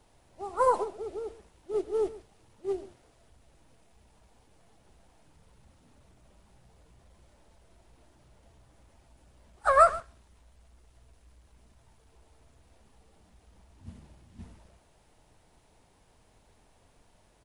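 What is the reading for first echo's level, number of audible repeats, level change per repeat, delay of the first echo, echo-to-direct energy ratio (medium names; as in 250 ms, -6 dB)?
-18.0 dB, 1, no regular repeats, 128 ms, -18.0 dB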